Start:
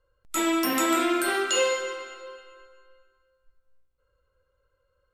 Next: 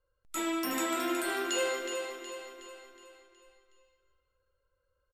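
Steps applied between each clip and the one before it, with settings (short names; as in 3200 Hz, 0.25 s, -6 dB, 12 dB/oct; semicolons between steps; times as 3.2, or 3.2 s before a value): feedback echo 0.368 s, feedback 49%, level -7 dB; gain -8 dB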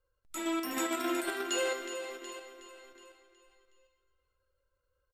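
flange 1.2 Hz, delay 2.4 ms, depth 1.1 ms, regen -64%; in parallel at +1.5 dB: level quantiser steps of 12 dB; on the sum: gain -2.5 dB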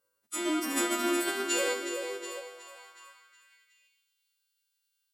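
frequency quantiser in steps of 2 st; high-pass sweep 210 Hz -> 3300 Hz, 1.58–4.15; gain +1 dB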